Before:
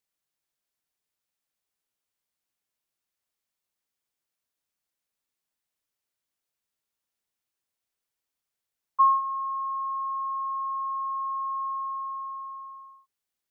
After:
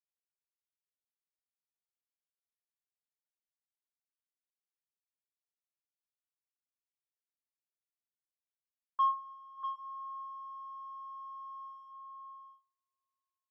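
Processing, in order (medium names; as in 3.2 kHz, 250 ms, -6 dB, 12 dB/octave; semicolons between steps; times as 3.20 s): reverb removal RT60 1.4 s; gate -43 dBFS, range -23 dB; high-pass 920 Hz 24 dB/octave; waveshaping leveller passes 1; distance through air 360 m; delay 643 ms -7 dB; reverberation, pre-delay 3 ms, DRR 10.5 dB; trim -6 dB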